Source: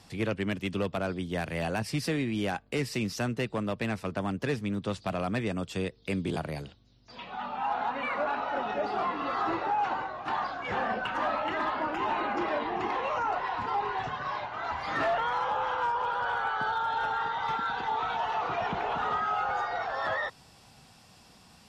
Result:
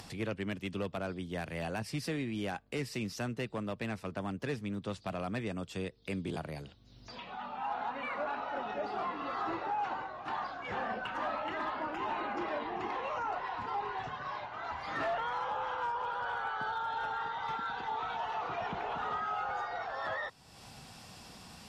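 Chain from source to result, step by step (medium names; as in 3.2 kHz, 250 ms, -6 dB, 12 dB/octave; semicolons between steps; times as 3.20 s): upward compressor, threshold -34 dBFS; trim -6 dB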